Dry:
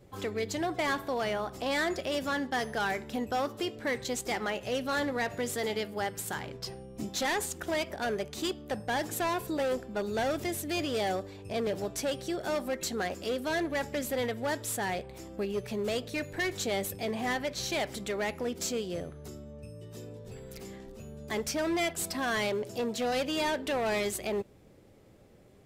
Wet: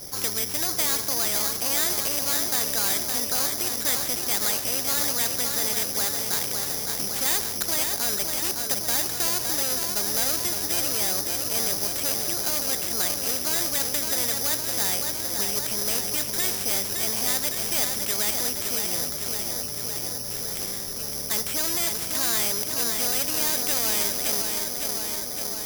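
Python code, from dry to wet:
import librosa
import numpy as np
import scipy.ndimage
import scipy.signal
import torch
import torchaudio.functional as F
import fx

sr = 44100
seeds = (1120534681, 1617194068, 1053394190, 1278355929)

p1 = x + fx.echo_filtered(x, sr, ms=561, feedback_pct=67, hz=2300.0, wet_db=-7.5, dry=0)
p2 = (np.kron(scipy.signal.resample_poly(p1, 1, 8), np.eye(8)[0]) * 8)[:len(p1)]
p3 = fx.spectral_comp(p2, sr, ratio=2.0)
y = F.gain(torch.from_numpy(p3), -2.5).numpy()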